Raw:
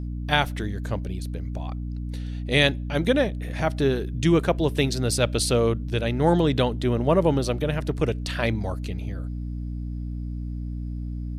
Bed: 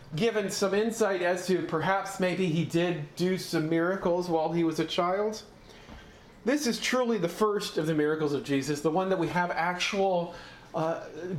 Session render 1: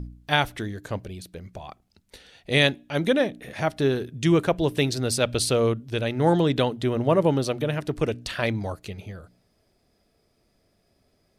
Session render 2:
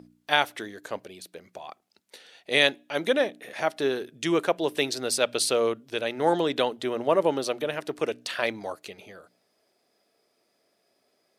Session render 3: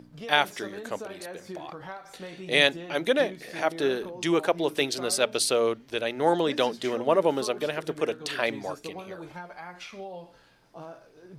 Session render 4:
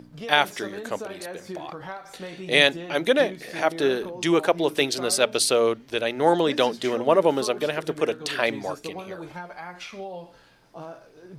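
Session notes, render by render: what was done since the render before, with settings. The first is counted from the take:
de-hum 60 Hz, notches 5
HPF 380 Hz 12 dB/oct
add bed -13.5 dB
gain +3.5 dB; limiter -3 dBFS, peak gain reduction 1.5 dB

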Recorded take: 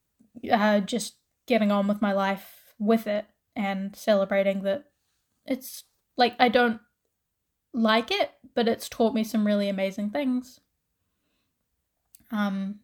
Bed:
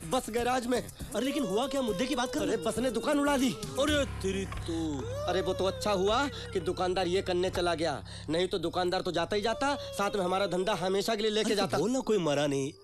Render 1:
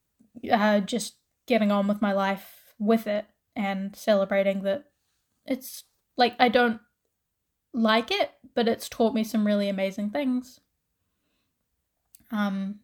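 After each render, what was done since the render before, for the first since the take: nothing audible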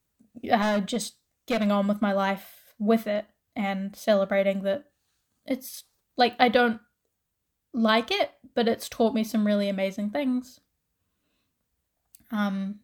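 0.62–1.67 hard clip -21 dBFS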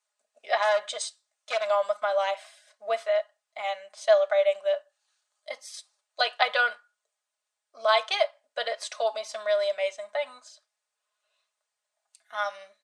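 Chebyshev band-pass 580–9000 Hz, order 4; comb 4.8 ms, depth 58%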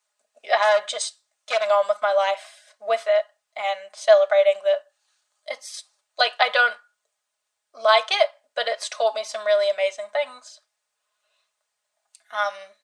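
gain +5.5 dB; limiter -2 dBFS, peak gain reduction 2 dB

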